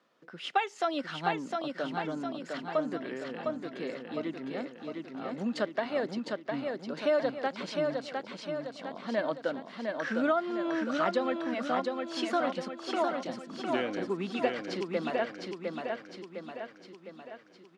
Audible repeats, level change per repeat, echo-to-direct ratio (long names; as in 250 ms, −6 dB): 6, −5.5 dB, −2.5 dB